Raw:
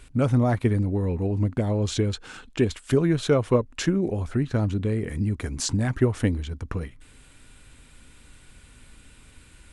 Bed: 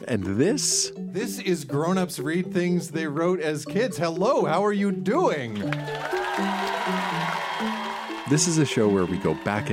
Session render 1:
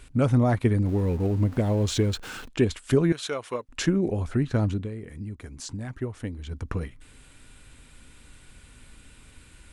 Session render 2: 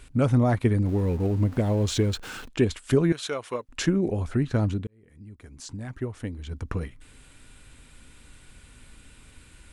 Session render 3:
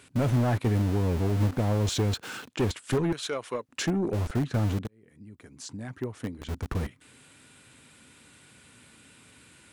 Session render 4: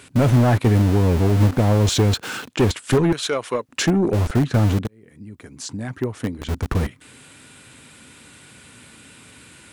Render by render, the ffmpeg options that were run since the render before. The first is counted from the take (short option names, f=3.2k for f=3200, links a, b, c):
-filter_complex "[0:a]asettb=1/sr,asplit=3[a][b][c];[a]atrim=end=0.854[d];[b]atrim=start=0.85:end=2.48,asetpts=PTS-STARTPTS,afade=t=in:d=0.004:c=qsin,afade=t=out:st=1.626:d=0.004:c=qsin,aeval=exprs='val(0)+0.5*0.0106*sgn(val(0))':c=same[e];[c]atrim=start=2.476[f];[d][e]acrossfade=d=0.004:c1=hsin:c2=qsin[g];[g][f]acrossfade=d=0.004:c1=qsin:c2=hsin,asettb=1/sr,asplit=3[h][i][j];[h]atrim=end=3.124[k];[i]atrim=start=3.12:end=3.69,asetpts=PTS-STARTPTS,afade=t=in:d=0.004:c=qsin,afade=t=out:st=0.566:d=0.004:c=qsin,highpass=f=1.5k:p=1[l];[j]atrim=start=3.686[m];[k][l]acrossfade=d=0.004:c1=hsin:c2=qsin[n];[n][m]acrossfade=d=0.004:c1=qsin:c2=hsin,asplit=3[o][p][q];[o]atrim=end=4.9,asetpts=PTS-STARTPTS,afade=t=out:st=4.7:d=0.2:silence=0.298538[r];[p]atrim=start=4.9:end=6.37,asetpts=PTS-STARTPTS,volume=-10.5dB[s];[q]atrim=start=6.37,asetpts=PTS-STARTPTS,afade=t=in:d=0.2:silence=0.298538[t];[r][s][t]concat=n=3:v=0:a=1"
-filter_complex "[0:a]asplit=2[a][b];[a]atrim=end=4.87,asetpts=PTS-STARTPTS,afade=t=out:st=4.866:d=0.004:c=hsin[c];[b]atrim=start=4.87,asetpts=PTS-STARTPTS,afade=t=in:d=1.12[d];[c][d]concat=n=2:v=0:a=1"
-filter_complex "[0:a]acrossover=split=100[a][b];[a]acrusher=bits=5:mix=0:aa=0.000001[c];[b]asoftclip=type=tanh:threshold=-21.5dB[d];[c][d]amix=inputs=2:normalize=0"
-af "volume=9dB"